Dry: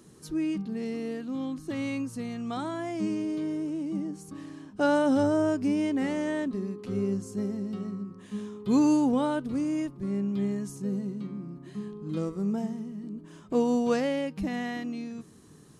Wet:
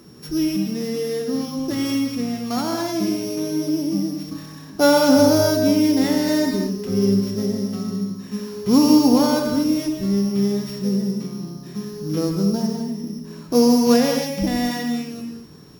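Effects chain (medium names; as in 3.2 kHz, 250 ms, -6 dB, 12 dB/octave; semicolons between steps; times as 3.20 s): sorted samples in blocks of 8 samples; gated-style reverb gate 270 ms flat, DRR 2.5 dB; trim +7.5 dB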